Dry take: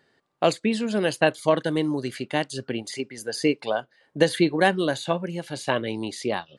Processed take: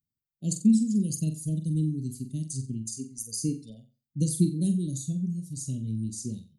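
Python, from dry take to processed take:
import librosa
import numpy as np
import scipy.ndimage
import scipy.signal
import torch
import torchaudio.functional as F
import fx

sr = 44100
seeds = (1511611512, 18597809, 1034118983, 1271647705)

y = fx.bin_expand(x, sr, power=1.5)
y = scipy.signal.sosfilt(scipy.signal.cheby1(3, 1.0, [210.0, 6700.0], 'bandstop', fs=sr, output='sos'), y)
y = fx.room_flutter(y, sr, wall_m=7.7, rt60_s=0.33)
y = y * 10.0 ** (7.5 / 20.0)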